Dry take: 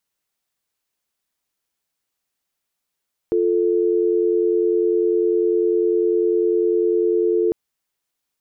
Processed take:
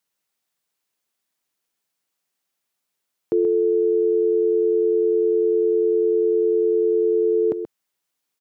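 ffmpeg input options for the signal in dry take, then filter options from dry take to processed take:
-f lavfi -i "aevalsrc='0.126*(sin(2*PI*350*t)+sin(2*PI*440*t))':duration=4.2:sample_rate=44100"
-filter_complex "[0:a]highpass=120,asplit=2[link_01][link_02];[link_02]aecho=0:1:130:0.335[link_03];[link_01][link_03]amix=inputs=2:normalize=0"

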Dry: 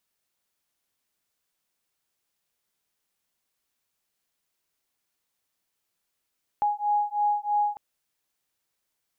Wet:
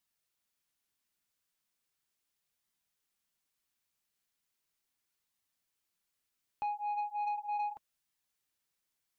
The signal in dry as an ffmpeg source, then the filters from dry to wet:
-f lavfi -i "aevalsrc='0.0531*(sin(2*PI*828*t)+sin(2*PI*831.1*t))':duration=1.15:sample_rate=44100"
-af "equalizer=frequency=590:width_type=o:width=1.6:gain=-4.5,flanger=delay=1:depth=9.7:regen=-60:speed=0.37:shape=sinusoidal,asoftclip=type=tanh:threshold=-30.5dB"

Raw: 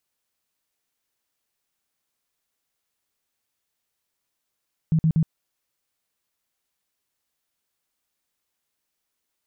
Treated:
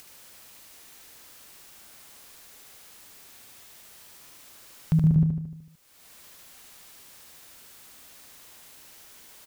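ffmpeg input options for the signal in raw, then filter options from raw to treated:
-f lavfi -i "aevalsrc='0.168*sin(2*PI*160*mod(t,0.12))*lt(mod(t,0.12),11/160)':duration=0.36:sample_rate=44100"
-af "acompressor=mode=upward:threshold=-29dB:ratio=2.5,aecho=1:1:75|150|225|300|375|450|525:0.562|0.309|0.17|0.0936|0.0515|0.0283|0.0156"

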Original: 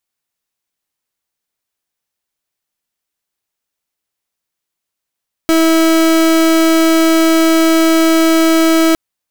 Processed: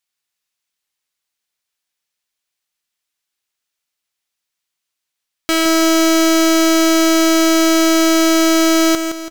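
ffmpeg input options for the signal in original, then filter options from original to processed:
-f lavfi -i "aevalsrc='0.316*(2*lt(mod(325*t,1),0.36)-1)':duration=3.46:sample_rate=44100"
-filter_complex "[0:a]lowpass=frequency=3900:poles=1,tiltshelf=frequency=1500:gain=-7.5,asplit=2[link_01][link_02];[link_02]aecho=0:1:166|332|498|664|830:0.398|0.175|0.0771|0.0339|0.0149[link_03];[link_01][link_03]amix=inputs=2:normalize=0"

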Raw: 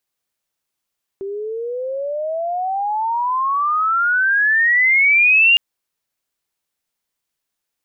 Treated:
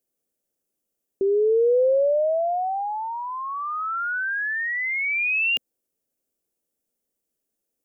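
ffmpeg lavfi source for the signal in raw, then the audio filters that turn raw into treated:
-f lavfi -i "aevalsrc='pow(10,(-8.5+15*(t/4.36-1))/20)*sin(2*PI*386*4.36/(34.5*log(2)/12)*(exp(34.5*log(2)/12*t/4.36)-1))':duration=4.36:sample_rate=44100"
-af "equalizer=frequency=125:width_type=o:width=1:gain=-5,equalizer=frequency=250:width_type=o:width=1:gain=7,equalizer=frequency=500:width_type=o:width=1:gain=8,equalizer=frequency=1000:width_type=o:width=1:gain=-11,equalizer=frequency=2000:width_type=o:width=1:gain=-8,equalizer=frequency=4000:width_type=o:width=1:gain=-10"

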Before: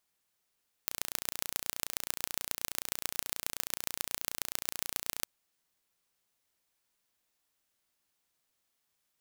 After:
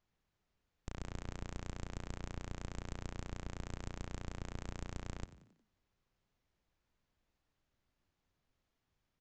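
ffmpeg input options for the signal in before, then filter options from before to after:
-f lavfi -i "aevalsrc='0.708*eq(mod(n,1500),0)*(0.5+0.5*eq(mod(n,6000),0))':duration=4.36:sample_rate=44100"
-filter_complex "[0:a]aemphasis=mode=reproduction:type=riaa,aresample=16000,asoftclip=type=hard:threshold=-29.5dB,aresample=44100,asplit=5[link_01][link_02][link_03][link_04][link_05];[link_02]adelay=90,afreqshift=53,volume=-15.5dB[link_06];[link_03]adelay=180,afreqshift=106,volume=-22.1dB[link_07];[link_04]adelay=270,afreqshift=159,volume=-28.6dB[link_08];[link_05]adelay=360,afreqshift=212,volume=-35.2dB[link_09];[link_01][link_06][link_07][link_08][link_09]amix=inputs=5:normalize=0"

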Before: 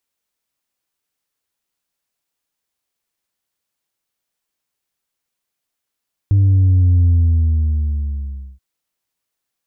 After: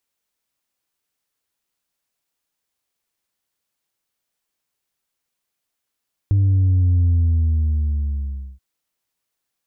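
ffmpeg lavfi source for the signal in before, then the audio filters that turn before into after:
-f lavfi -i "aevalsrc='0.335*clip((2.28-t)/1.53,0,1)*tanh(1.26*sin(2*PI*100*2.28/log(65/100)*(exp(log(65/100)*t/2.28)-1)))/tanh(1.26)':duration=2.28:sample_rate=44100"
-af "acompressor=threshold=-21dB:ratio=1.5"

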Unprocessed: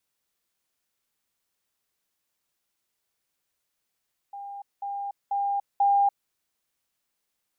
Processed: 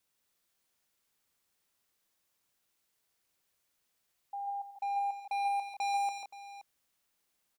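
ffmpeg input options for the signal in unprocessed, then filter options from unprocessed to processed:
-f lavfi -i "aevalsrc='pow(10,(-35.5+6*floor(t/0.49))/20)*sin(2*PI*802*t)*clip(min(mod(t,0.49),0.29-mod(t,0.49))/0.005,0,1)':duration=1.96:sample_rate=44100"
-af "volume=32dB,asoftclip=hard,volume=-32dB,aecho=1:1:90|141|169|524:0.141|0.447|0.299|0.168"

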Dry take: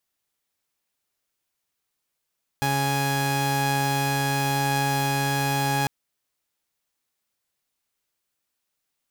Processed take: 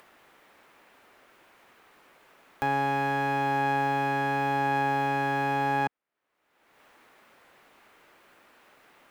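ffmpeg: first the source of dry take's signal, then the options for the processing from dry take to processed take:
-f lavfi -i "aevalsrc='0.0794*((2*mod(138.59*t,1)-1)+(2*mod(830.61*t,1)-1))':duration=3.25:sample_rate=44100"
-filter_complex "[0:a]acrossover=split=220 2400:gain=0.224 1 0.0708[link_01][link_02][link_03];[link_01][link_02][link_03]amix=inputs=3:normalize=0,acompressor=mode=upward:threshold=-33dB:ratio=2.5"

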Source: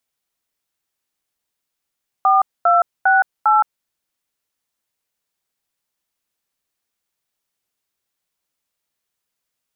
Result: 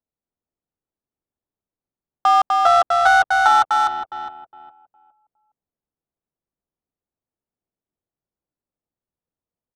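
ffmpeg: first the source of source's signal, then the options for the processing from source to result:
-f lavfi -i "aevalsrc='0.224*clip(min(mod(t,0.402),0.168-mod(t,0.402))/0.002,0,1)*(eq(floor(t/0.402),0)*(sin(2*PI*770*mod(t,0.402))+sin(2*PI*1209*mod(t,0.402)))+eq(floor(t/0.402),1)*(sin(2*PI*697*mod(t,0.402))+sin(2*PI*1336*mod(t,0.402)))+eq(floor(t/0.402),2)*(sin(2*PI*770*mod(t,0.402))+sin(2*PI*1477*mod(t,0.402)))+eq(floor(t/0.402),3)*(sin(2*PI*852*mod(t,0.402))+sin(2*PI*1336*mod(t,0.402))))':duration=1.608:sample_rate=44100"
-filter_complex "[0:a]asplit=2[link_01][link_02];[link_02]adelay=411,lowpass=frequency=1300:poles=1,volume=-9.5dB,asplit=2[link_03][link_04];[link_04]adelay=411,lowpass=frequency=1300:poles=1,volume=0.4,asplit=2[link_05][link_06];[link_06]adelay=411,lowpass=frequency=1300:poles=1,volume=0.4,asplit=2[link_07][link_08];[link_08]adelay=411,lowpass=frequency=1300:poles=1,volume=0.4[link_09];[link_03][link_05][link_07][link_09]amix=inputs=4:normalize=0[link_10];[link_01][link_10]amix=inputs=2:normalize=0,adynamicsmooth=sensitivity=1:basefreq=660,asplit=2[link_11][link_12];[link_12]aecho=0:1:250:0.668[link_13];[link_11][link_13]amix=inputs=2:normalize=0"

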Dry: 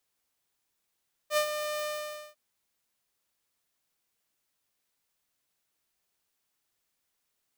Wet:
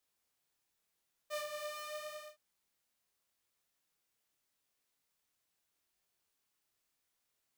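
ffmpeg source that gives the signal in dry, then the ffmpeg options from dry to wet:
-f lavfi -i "aevalsrc='0.106*(2*mod(602*t,1)-1)':duration=1.048:sample_rate=44100,afade=type=in:duration=0.071,afade=type=out:start_time=0.071:duration=0.084:silence=0.355,afade=type=out:start_time=0.54:duration=0.508"
-af "acompressor=threshold=-43dB:ratio=2,flanger=delay=22.5:depth=6.7:speed=0.83"

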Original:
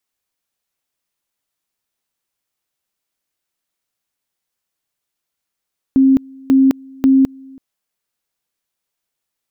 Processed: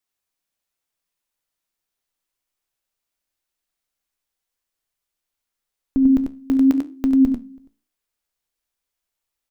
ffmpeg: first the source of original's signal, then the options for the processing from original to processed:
-f lavfi -i "aevalsrc='pow(10,(-7-27.5*gte(mod(t,0.54),0.21))/20)*sin(2*PI*267*t)':duration=1.62:sample_rate=44100"
-af "asubboost=boost=5:cutoff=56,flanger=delay=8.7:depth=9.9:regen=74:speed=0.85:shape=triangular,aecho=1:1:69|94:0.133|0.562"

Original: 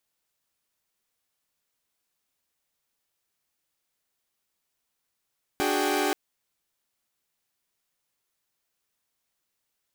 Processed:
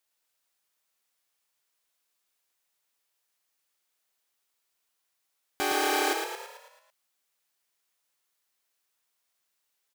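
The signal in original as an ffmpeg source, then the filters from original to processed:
-f lavfi -i "aevalsrc='0.0473*((2*mod(293.66*t,1)-1)+(2*mod(369.99*t,1)-1)+(2*mod(415.3*t,1)-1)+(2*mod(783.99*t,1)-1))':duration=0.53:sample_rate=44100"
-filter_complex "[0:a]highpass=frequency=110:poles=1,equalizer=frequency=160:width=0.52:gain=-8.5,asplit=2[link_01][link_02];[link_02]asplit=7[link_03][link_04][link_05][link_06][link_07][link_08][link_09];[link_03]adelay=110,afreqshift=33,volume=-5dB[link_10];[link_04]adelay=220,afreqshift=66,volume=-10.5dB[link_11];[link_05]adelay=330,afreqshift=99,volume=-16dB[link_12];[link_06]adelay=440,afreqshift=132,volume=-21.5dB[link_13];[link_07]adelay=550,afreqshift=165,volume=-27.1dB[link_14];[link_08]adelay=660,afreqshift=198,volume=-32.6dB[link_15];[link_09]adelay=770,afreqshift=231,volume=-38.1dB[link_16];[link_10][link_11][link_12][link_13][link_14][link_15][link_16]amix=inputs=7:normalize=0[link_17];[link_01][link_17]amix=inputs=2:normalize=0"

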